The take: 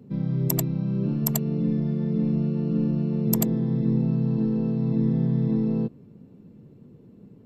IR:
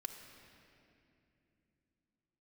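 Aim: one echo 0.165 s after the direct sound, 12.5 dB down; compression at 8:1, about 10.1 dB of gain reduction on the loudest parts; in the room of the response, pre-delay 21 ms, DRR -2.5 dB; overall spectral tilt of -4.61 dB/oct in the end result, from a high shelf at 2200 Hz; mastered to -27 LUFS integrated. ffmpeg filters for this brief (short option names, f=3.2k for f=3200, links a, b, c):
-filter_complex "[0:a]highshelf=f=2.2k:g=5,acompressor=threshold=-27dB:ratio=8,aecho=1:1:165:0.237,asplit=2[a][b];[1:a]atrim=start_sample=2205,adelay=21[c];[b][c]afir=irnorm=-1:irlink=0,volume=4.5dB[d];[a][d]amix=inputs=2:normalize=0,volume=1.5dB"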